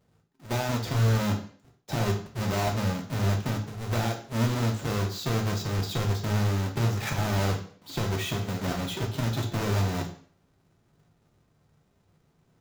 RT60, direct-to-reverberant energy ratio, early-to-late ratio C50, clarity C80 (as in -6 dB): 0.50 s, 1.5 dB, 9.0 dB, 13.5 dB